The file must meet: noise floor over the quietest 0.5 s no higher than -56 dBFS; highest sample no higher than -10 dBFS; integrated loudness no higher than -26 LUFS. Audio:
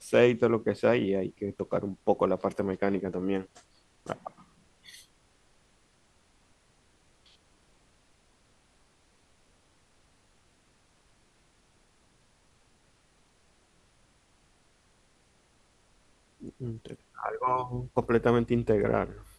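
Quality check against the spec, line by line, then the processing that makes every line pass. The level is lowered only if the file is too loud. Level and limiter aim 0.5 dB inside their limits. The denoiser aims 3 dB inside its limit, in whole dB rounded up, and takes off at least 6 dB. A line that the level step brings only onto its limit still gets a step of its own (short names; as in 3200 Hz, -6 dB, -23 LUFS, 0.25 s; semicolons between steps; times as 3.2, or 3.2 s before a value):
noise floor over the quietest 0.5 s -65 dBFS: OK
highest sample -8.0 dBFS: fail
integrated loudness -29.0 LUFS: OK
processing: limiter -10.5 dBFS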